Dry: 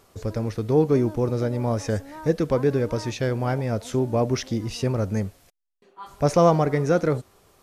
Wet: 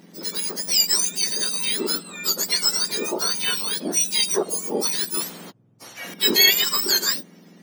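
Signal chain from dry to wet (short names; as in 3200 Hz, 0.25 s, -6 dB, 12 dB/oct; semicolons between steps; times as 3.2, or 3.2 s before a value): spectrum mirrored in octaves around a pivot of 1500 Hz; 5.2–6.14 spectral compressor 2:1; gain +6.5 dB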